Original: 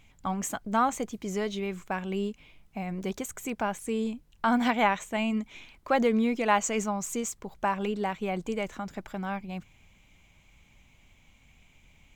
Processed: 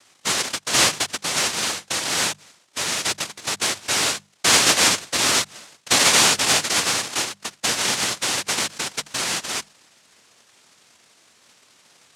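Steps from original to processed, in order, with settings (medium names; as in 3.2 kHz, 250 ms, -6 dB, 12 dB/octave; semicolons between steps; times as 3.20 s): comb filter that takes the minimum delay 0.53 ms; noise-vocoded speech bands 1; hum notches 50/100/150/200 Hz; trim +8.5 dB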